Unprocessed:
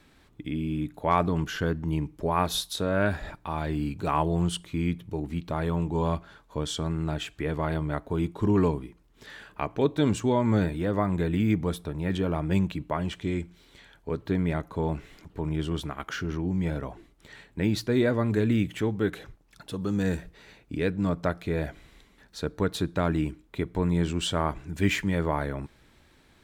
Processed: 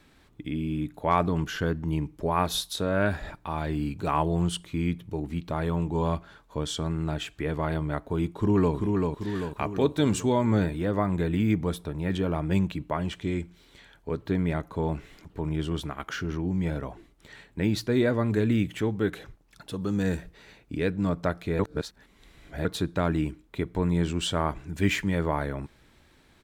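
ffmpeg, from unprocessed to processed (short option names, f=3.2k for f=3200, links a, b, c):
-filter_complex "[0:a]asplit=2[a][b];[b]afade=t=in:st=8.27:d=0.01,afade=t=out:st=8.75:d=0.01,aecho=0:1:390|780|1170|1560|1950|2340|2730|3120:0.668344|0.367589|0.202174|0.111196|0.0611576|0.0336367|0.0185002|0.0101751[c];[a][c]amix=inputs=2:normalize=0,asettb=1/sr,asplit=3[d][e][f];[d]atrim=end=9.354[g];[e]atrim=start=9.35:end=10.45,asetpts=PTS-STARTPTS,afade=t=in:d=0.004:c=qsin,afade=t=out:st=1.096:d=0.004:c=qsin,highshelf=f=5.1k:g=7[h];[f]atrim=start=10.446[i];[g][h]acrossfade=d=0.004:c1=hsin:c2=qsin[j];[j][i]acrossfade=d=0.004:c1=qsin:c2=hsin,asplit=3[k][l][m];[k]atrim=end=21.592[n];[l]atrim=start=21.588:end=22.652,asetpts=PTS-STARTPTS,areverse[o];[m]atrim=start=22.648[p];[n][o]acrossfade=d=0.004:c1=hsin:c2=hsin[q];[q][p]acrossfade=d=0.004:c1=hsin:c2=hsin"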